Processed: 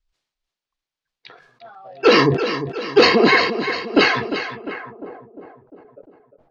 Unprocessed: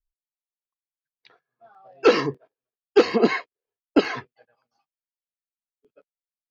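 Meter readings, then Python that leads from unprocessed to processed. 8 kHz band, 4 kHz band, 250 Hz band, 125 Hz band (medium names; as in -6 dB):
no reading, +12.5 dB, +5.0 dB, +11.5 dB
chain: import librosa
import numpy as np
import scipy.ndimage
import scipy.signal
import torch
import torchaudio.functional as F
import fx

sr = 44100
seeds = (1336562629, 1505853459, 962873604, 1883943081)

p1 = fx.over_compress(x, sr, threshold_db=-22.0, ratio=-0.5)
p2 = x + (p1 * 10.0 ** (-1.0 / 20.0))
p3 = fx.echo_feedback(p2, sr, ms=351, feedback_pct=54, wet_db=-10)
p4 = fx.filter_sweep_lowpass(p3, sr, from_hz=4600.0, to_hz=610.0, start_s=4.45, end_s=5.13, q=1.2)
p5 = fx.sustainer(p4, sr, db_per_s=67.0)
y = p5 * 10.0 ** (1.5 / 20.0)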